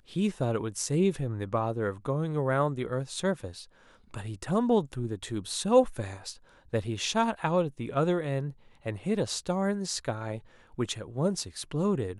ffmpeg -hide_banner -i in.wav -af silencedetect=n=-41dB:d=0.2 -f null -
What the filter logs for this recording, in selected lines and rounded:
silence_start: 3.64
silence_end: 4.14 | silence_duration: 0.50
silence_start: 6.34
silence_end: 6.73 | silence_duration: 0.40
silence_start: 8.51
silence_end: 8.86 | silence_duration: 0.34
silence_start: 10.39
silence_end: 10.78 | silence_duration: 0.39